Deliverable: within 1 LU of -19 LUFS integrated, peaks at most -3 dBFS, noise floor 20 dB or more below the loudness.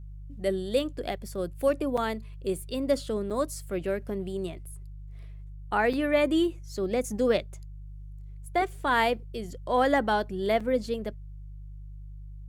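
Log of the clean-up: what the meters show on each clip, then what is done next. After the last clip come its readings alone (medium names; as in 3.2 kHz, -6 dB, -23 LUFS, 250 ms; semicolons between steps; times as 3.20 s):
dropouts 4; longest dropout 5.2 ms; hum 50 Hz; highest harmonic 150 Hz; hum level -39 dBFS; loudness -28.5 LUFS; peak level -11.0 dBFS; loudness target -19.0 LUFS
-> interpolate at 1.97/3.30/5.93/10.60 s, 5.2 ms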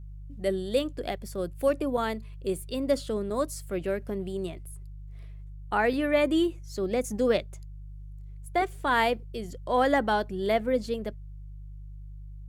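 dropouts 0; hum 50 Hz; highest harmonic 150 Hz; hum level -39 dBFS
-> de-hum 50 Hz, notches 3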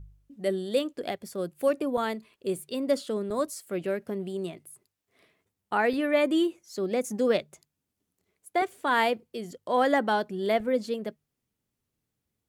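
hum not found; loudness -28.5 LUFS; peak level -11.0 dBFS; loudness target -19.0 LUFS
-> trim +9.5 dB; peak limiter -3 dBFS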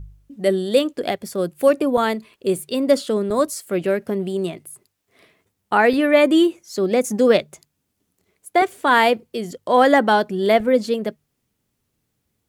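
loudness -19.0 LUFS; peak level -3.0 dBFS; noise floor -74 dBFS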